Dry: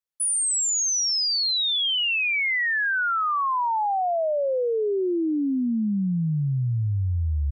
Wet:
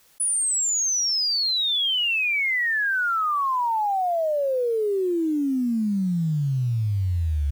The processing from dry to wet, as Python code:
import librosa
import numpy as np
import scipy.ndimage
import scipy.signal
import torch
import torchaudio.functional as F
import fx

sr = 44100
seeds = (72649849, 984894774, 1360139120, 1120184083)

y = fx.high_shelf(x, sr, hz=6500.0, db=4.0, at=(1.7, 4.04))
y = fx.quant_float(y, sr, bits=4)
y = fx.env_flatten(y, sr, amount_pct=50)